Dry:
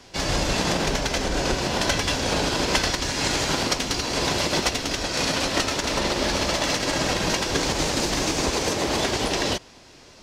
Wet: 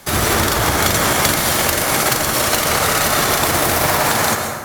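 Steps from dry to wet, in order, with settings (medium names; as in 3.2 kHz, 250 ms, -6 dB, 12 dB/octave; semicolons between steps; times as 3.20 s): peaking EQ 4.1 kHz -2 dB 0.4 oct; wide varispeed 2.2×; plate-style reverb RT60 1.4 s, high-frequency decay 0.6×, pre-delay 105 ms, DRR 3.5 dB; trim +6.5 dB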